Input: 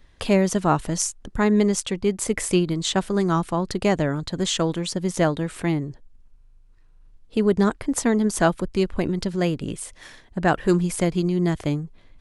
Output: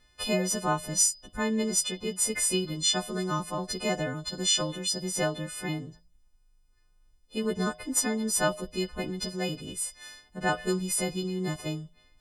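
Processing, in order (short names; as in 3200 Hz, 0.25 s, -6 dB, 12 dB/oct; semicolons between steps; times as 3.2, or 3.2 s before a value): frequency quantiser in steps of 3 st; resonator 56 Hz, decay 0.42 s, harmonics odd, mix 60%; gain -2.5 dB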